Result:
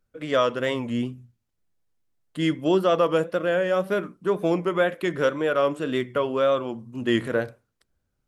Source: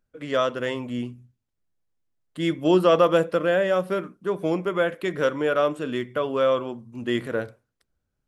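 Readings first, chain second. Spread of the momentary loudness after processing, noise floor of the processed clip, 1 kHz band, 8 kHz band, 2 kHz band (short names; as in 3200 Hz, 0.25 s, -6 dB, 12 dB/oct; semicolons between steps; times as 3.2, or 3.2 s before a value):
7 LU, -77 dBFS, -0.5 dB, n/a, +0.5 dB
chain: vocal rider within 3 dB 0.5 s; wow and flutter 74 cents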